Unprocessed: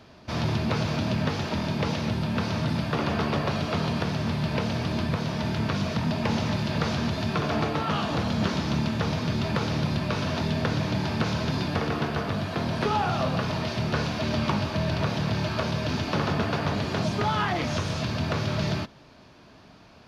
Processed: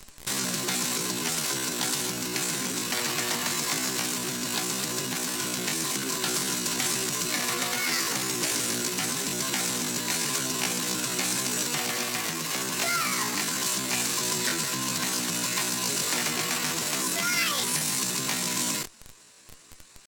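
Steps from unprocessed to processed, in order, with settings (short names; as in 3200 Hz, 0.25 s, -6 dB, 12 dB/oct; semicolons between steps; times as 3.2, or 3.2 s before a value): in parallel at -7 dB: Schmitt trigger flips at -42 dBFS; on the sum: downsampling 22050 Hz; pitch shift +8.5 st; pre-emphasis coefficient 0.9; gain +8.5 dB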